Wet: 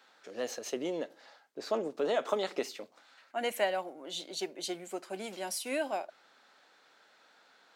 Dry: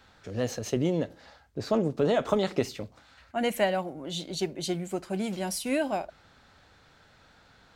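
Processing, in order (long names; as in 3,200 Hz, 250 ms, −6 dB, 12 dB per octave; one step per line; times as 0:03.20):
Bessel high-pass filter 410 Hz, order 4
level −3 dB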